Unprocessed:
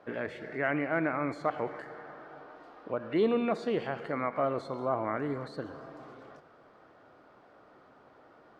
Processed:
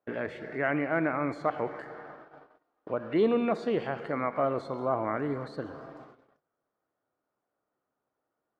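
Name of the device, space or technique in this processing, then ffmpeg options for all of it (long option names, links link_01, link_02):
behind a face mask: -af "highshelf=frequency=2800:gain=-4,agate=range=-28dB:threshold=-47dB:ratio=16:detection=peak,volume=2dB"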